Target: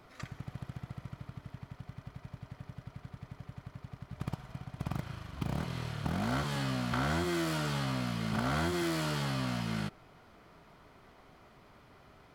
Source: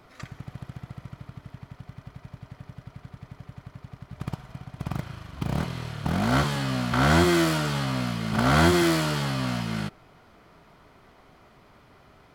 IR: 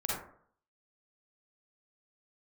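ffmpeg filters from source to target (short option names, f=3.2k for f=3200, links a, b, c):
-af "acompressor=threshold=-26dB:ratio=5,volume=-3.5dB"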